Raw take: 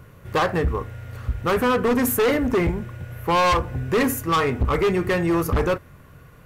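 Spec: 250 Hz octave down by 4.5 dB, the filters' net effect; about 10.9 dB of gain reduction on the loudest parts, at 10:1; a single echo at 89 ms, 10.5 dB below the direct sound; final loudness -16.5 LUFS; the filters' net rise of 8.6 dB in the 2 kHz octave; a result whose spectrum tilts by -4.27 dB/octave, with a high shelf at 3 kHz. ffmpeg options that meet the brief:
-af "equalizer=f=250:t=o:g=-6.5,equalizer=f=2000:t=o:g=9,highshelf=f=3000:g=4.5,acompressor=threshold=0.0708:ratio=10,aecho=1:1:89:0.299,volume=3.55"

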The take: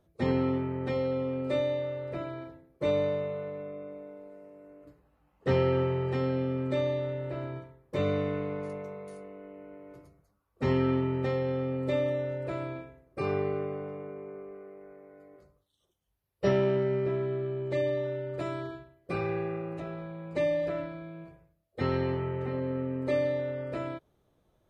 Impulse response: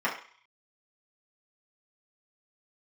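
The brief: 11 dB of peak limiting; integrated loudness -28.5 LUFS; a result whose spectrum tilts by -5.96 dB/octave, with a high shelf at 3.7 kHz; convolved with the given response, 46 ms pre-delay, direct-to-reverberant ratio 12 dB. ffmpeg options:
-filter_complex "[0:a]highshelf=f=3700:g=3.5,alimiter=limit=0.0631:level=0:latency=1,asplit=2[s0][s1];[1:a]atrim=start_sample=2205,adelay=46[s2];[s1][s2]afir=irnorm=-1:irlink=0,volume=0.0631[s3];[s0][s3]amix=inputs=2:normalize=0,volume=1.88"

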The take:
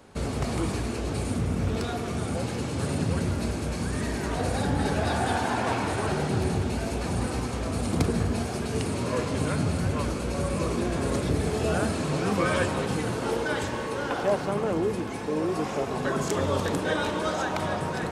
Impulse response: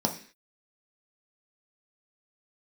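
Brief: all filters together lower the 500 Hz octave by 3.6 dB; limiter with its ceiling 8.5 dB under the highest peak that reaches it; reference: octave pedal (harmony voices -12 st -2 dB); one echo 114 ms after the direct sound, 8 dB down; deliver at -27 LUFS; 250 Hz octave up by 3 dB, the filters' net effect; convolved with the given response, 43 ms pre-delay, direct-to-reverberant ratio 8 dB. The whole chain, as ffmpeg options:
-filter_complex "[0:a]equalizer=f=250:t=o:g=5.5,equalizer=f=500:t=o:g=-6.5,alimiter=limit=0.1:level=0:latency=1,aecho=1:1:114:0.398,asplit=2[s0][s1];[1:a]atrim=start_sample=2205,adelay=43[s2];[s1][s2]afir=irnorm=-1:irlink=0,volume=0.141[s3];[s0][s3]amix=inputs=2:normalize=0,asplit=2[s4][s5];[s5]asetrate=22050,aresample=44100,atempo=2,volume=0.794[s6];[s4][s6]amix=inputs=2:normalize=0,volume=0.75"

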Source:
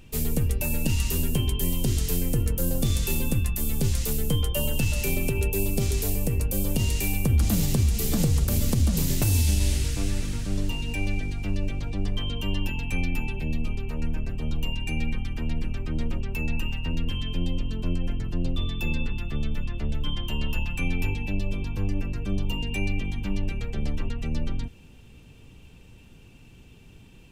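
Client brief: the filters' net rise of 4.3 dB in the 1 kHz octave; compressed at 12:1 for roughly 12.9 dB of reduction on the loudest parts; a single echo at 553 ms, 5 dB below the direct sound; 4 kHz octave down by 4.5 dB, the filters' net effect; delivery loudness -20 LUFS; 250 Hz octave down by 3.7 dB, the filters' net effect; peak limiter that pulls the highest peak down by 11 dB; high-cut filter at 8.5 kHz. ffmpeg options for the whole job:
-af "lowpass=8500,equalizer=f=250:t=o:g=-5.5,equalizer=f=1000:t=o:g=6,equalizer=f=4000:t=o:g=-7,acompressor=threshold=0.0251:ratio=12,alimiter=level_in=3.55:limit=0.0631:level=0:latency=1,volume=0.282,aecho=1:1:553:0.562,volume=16.8"

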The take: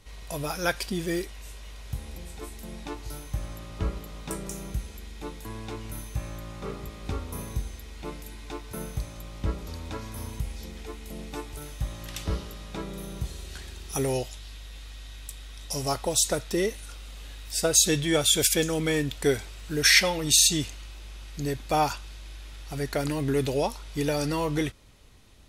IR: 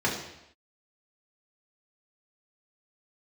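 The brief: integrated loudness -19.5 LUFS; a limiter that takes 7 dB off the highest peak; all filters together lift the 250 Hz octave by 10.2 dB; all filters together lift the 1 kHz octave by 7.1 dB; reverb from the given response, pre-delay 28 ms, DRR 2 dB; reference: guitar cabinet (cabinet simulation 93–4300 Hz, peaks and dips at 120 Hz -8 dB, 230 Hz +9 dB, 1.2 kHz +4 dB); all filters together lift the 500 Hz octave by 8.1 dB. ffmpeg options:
-filter_complex "[0:a]equalizer=f=250:t=o:g=8.5,equalizer=f=500:t=o:g=5.5,equalizer=f=1000:t=o:g=5.5,alimiter=limit=0.282:level=0:latency=1,asplit=2[s0][s1];[1:a]atrim=start_sample=2205,adelay=28[s2];[s1][s2]afir=irnorm=-1:irlink=0,volume=0.2[s3];[s0][s3]amix=inputs=2:normalize=0,highpass=93,equalizer=f=120:t=q:w=4:g=-8,equalizer=f=230:t=q:w=4:g=9,equalizer=f=1200:t=q:w=4:g=4,lowpass=f=4300:w=0.5412,lowpass=f=4300:w=1.3066,volume=1.33"

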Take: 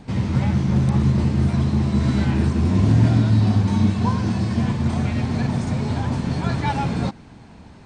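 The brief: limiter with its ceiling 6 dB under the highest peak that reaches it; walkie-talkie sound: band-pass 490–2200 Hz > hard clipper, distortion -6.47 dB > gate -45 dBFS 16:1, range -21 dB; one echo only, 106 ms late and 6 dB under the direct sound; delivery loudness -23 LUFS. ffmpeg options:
-af "alimiter=limit=0.266:level=0:latency=1,highpass=490,lowpass=2200,aecho=1:1:106:0.501,asoftclip=type=hard:threshold=0.0178,agate=range=0.0891:threshold=0.00562:ratio=16,volume=5.31"

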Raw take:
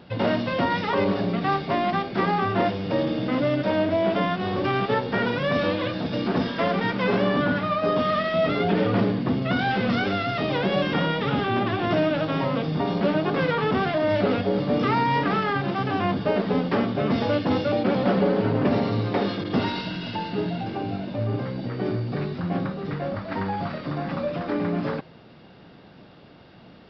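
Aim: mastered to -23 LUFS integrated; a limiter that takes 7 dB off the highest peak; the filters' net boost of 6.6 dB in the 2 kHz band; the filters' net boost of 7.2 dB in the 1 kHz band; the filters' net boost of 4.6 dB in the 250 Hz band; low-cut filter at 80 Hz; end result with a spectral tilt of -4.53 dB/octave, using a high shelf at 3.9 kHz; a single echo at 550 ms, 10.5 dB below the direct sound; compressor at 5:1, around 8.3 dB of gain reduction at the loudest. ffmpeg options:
-af "highpass=80,equalizer=f=250:t=o:g=5.5,equalizer=f=1000:t=o:g=7.5,equalizer=f=2000:t=o:g=4.5,highshelf=f=3900:g=5,acompressor=threshold=0.0794:ratio=5,alimiter=limit=0.126:level=0:latency=1,aecho=1:1:550:0.299,volume=1.5"

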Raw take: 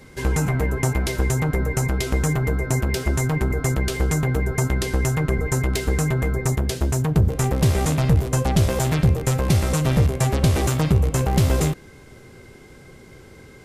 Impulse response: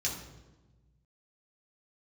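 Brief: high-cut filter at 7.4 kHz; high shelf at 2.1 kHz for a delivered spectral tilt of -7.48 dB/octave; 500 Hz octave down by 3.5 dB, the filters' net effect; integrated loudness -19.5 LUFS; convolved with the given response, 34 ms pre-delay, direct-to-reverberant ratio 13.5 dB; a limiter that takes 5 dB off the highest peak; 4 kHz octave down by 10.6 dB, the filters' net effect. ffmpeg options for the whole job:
-filter_complex "[0:a]lowpass=7400,equalizer=f=500:t=o:g=-4,highshelf=f=2100:g=-6.5,equalizer=f=4000:t=o:g=-7,alimiter=limit=0.237:level=0:latency=1,asplit=2[s0][s1];[1:a]atrim=start_sample=2205,adelay=34[s2];[s1][s2]afir=irnorm=-1:irlink=0,volume=0.126[s3];[s0][s3]amix=inputs=2:normalize=0,volume=1.33"

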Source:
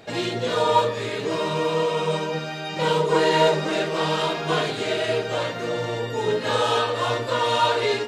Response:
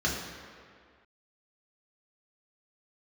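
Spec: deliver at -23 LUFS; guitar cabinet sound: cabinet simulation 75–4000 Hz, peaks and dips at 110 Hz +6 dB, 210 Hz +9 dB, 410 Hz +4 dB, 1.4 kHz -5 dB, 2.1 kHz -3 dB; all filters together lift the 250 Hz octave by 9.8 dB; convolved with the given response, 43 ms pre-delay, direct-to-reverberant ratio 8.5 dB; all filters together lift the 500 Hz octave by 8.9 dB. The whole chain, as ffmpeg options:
-filter_complex "[0:a]equalizer=f=250:t=o:g=7.5,equalizer=f=500:t=o:g=6,asplit=2[s0][s1];[1:a]atrim=start_sample=2205,adelay=43[s2];[s1][s2]afir=irnorm=-1:irlink=0,volume=0.112[s3];[s0][s3]amix=inputs=2:normalize=0,highpass=75,equalizer=f=110:t=q:w=4:g=6,equalizer=f=210:t=q:w=4:g=9,equalizer=f=410:t=q:w=4:g=4,equalizer=f=1400:t=q:w=4:g=-5,equalizer=f=2100:t=q:w=4:g=-3,lowpass=f=4000:w=0.5412,lowpass=f=4000:w=1.3066,volume=0.447"

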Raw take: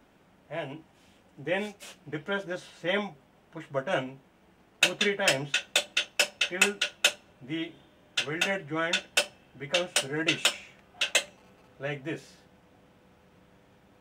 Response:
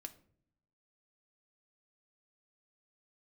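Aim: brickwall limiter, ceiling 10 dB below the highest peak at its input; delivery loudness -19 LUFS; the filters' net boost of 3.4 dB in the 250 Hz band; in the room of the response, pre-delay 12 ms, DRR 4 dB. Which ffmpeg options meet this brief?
-filter_complex "[0:a]equalizer=f=250:t=o:g=5,alimiter=limit=0.15:level=0:latency=1,asplit=2[s0][s1];[1:a]atrim=start_sample=2205,adelay=12[s2];[s1][s2]afir=irnorm=-1:irlink=0,volume=1.12[s3];[s0][s3]amix=inputs=2:normalize=0,volume=3.55"

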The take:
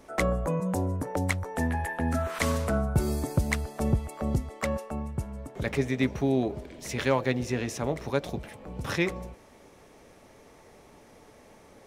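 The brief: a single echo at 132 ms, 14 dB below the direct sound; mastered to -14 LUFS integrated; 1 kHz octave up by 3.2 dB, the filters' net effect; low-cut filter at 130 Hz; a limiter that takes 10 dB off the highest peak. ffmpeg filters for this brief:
-af "highpass=130,equalizer=f=1000:t=o:g=4,alimiter=limit=0.0944:level=0:latency=1,aecho=1:1:132:0.2,volume=8.41"

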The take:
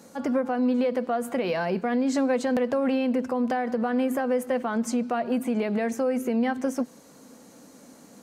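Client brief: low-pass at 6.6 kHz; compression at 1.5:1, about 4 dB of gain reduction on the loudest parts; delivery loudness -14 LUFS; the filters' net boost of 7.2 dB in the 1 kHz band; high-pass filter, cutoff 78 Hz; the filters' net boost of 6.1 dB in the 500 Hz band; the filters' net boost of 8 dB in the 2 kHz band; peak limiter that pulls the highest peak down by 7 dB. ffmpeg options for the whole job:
-af "highpass=78,lowpass=6600,equalizer=f=500:t=o:g=4.5,equalizer=f=1000:t=o:g=7,equalizer=f=2000:t=o:g=7.5,acompressor=threshold=0.0501:ratio=1.5,volume=4.73,alimiter=limit=0.562:level=0:latency=1"

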